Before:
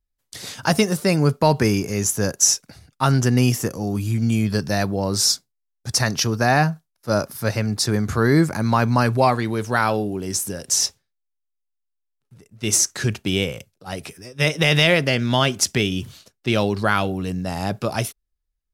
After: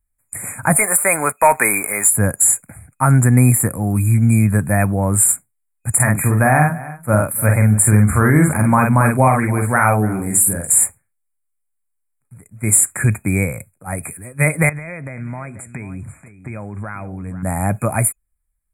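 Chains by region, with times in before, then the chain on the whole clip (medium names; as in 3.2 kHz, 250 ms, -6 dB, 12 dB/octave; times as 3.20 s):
0.76–2.10 s: high-pass 700 Hz + waveshaping leveller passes 2
5.95–10.84 s: doubling 47 ms -4 dB + delay 285 ms -20.5 dB
14.69–17.43 s: compression 4:1, threshold -32 dBFS + distance through air 83 m + delay 486 ms -13.5 dB
whole clip: FFT band-reject 2.5–7 kHz; fifteen-band graphic EQ 100 Hz +4 dB, 400 Hz -8 dB, 10 kHz +11 dB; loudness maximiser +6.5 dB; trim -1 dB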